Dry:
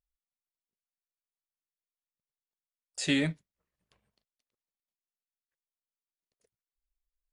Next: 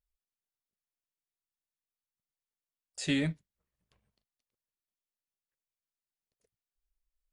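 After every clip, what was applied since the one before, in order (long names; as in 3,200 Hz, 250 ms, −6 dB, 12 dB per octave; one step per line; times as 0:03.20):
low-shelf EQ 170 Hz +7.5 dB
level −4 dB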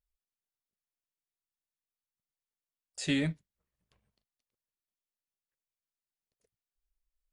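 no processing that can be heard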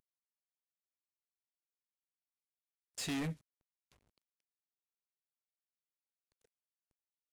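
variable-slope delta modulation 64 kbit/s
soft clipping −35.5 dBFS, distortion −7 dB
level +1 dB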